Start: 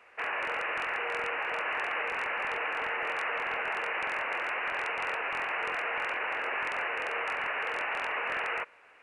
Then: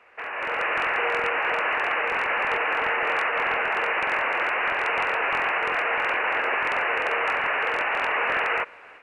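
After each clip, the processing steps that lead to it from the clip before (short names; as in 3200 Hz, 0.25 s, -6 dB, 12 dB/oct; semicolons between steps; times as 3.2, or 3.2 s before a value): high shelf 5500 Hz -10.5 dB; limiter -28.5 dBFS, peak gain reduction 7 dB; AGC gain up to 9.5 dB; gain +3 dB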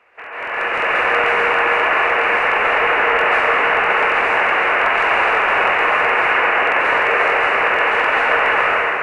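plate-style reverb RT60 3.6 s, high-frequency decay 0.65×, pre-delay 0.12 s, DRR -8.5 dB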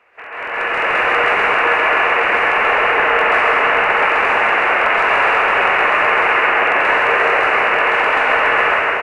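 echo 0.132 s -4 dB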